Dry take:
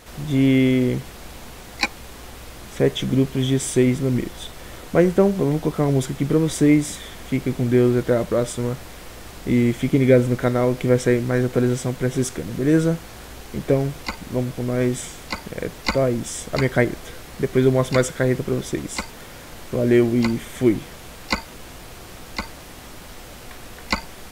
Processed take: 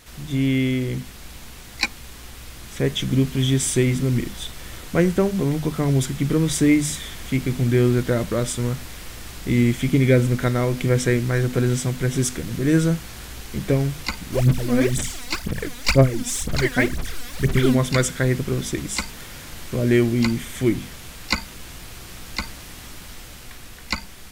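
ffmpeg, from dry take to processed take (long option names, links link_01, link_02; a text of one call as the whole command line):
ffmpeg -i in.wav -filter_complex "[0:a]asplit=3[link_01][link_02][link_03];[link_01]afade=type=out:start_time=14.32:duration=0.02[link_04];[link_02]aphaser=in_gain=1:out_gain=1:delay=4.2:decay=0.79:speed=2:type=sinusoidal,afade=type=in:start_time=14.32:duration=0.02,afade=type=out:start_time=17.74:duration=0.02[link_05];[link_03]afade=type=in:start_time=17.74:duration=0.02[link_06];[link_04][link_05][link_06]amix=inputs=3:normalize=0,equalizer=frequency=580:width_type=o:width=2.2:gain=-9,bandreject=frequency=50:width_type=h:width=6,bandreject=frequency=100:width_type=h:width=6,bandreject=frequency=150:width_type=h:width=6,bandreject=frequency=200:width_type=h:width=6,bandreject=frequency=250:width_type=h:width=6,dynaudnorm=framelen=110:gausssize=21:maxgain=4.5dB" out.wav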